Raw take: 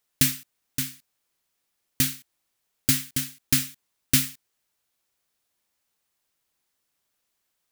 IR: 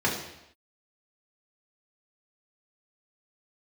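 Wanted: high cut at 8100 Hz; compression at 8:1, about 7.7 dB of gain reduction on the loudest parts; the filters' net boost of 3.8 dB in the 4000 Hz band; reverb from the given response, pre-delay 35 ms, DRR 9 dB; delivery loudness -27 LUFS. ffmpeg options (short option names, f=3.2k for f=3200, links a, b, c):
-filter_complex "[0:a]lowpass=8.1k,equalizer=f=4k:t=o:g=5,acompressor=threshold=-25dB:ratio=8,asplit=2[a][b];[1:a]atrim=start_sample=2205,adelay=35[c];[b][c]afir=irnorm=-1:irlink=0,volume=-22dB[d];[a][d]amix=inputs=2:normalize=0,volume=6.5dB"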